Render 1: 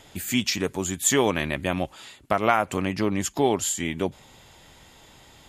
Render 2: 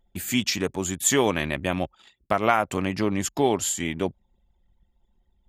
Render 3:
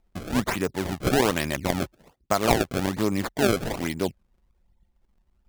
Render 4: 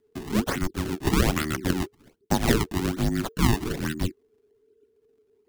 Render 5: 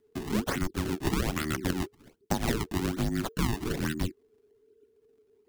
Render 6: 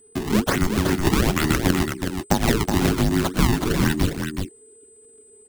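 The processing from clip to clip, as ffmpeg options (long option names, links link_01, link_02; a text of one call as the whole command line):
ffmpeg -i in.wav -af "anlmdn=0.398" out.wav
ffmpeg -i in.wav -af "highshelf=frequency=9500:gain=-7,acrusher=samples=27:mix=1:aa=0.000001:lfo=1:lforange=43.2:lforate=1.2" out.wav
ffmpeg -i in.wav -af "afreqshift=-460" out.wav
ffmpeg -i in.wav -af "acompressor=threshold=-25dB:ratio=4" out.wav
ffmpeg -i in.wav -af "aeval=exprs='val(0)+0.000891*sin(2*PI*8100*n/s)':channel_layout=same,aecho=1:1:372:0.501,volume=9dB" out.wav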